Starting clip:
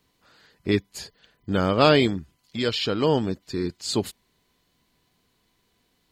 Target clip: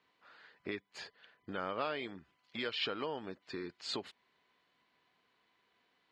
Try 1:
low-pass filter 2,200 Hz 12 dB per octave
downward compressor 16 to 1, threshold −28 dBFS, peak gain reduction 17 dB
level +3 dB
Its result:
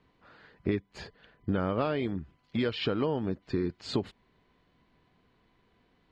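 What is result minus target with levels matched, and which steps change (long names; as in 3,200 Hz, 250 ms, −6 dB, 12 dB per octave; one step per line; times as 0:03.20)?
1,000 Hz band −4.0 dB
add after downward compressor: high-pass filter 1,300 Hz 6 dB per octave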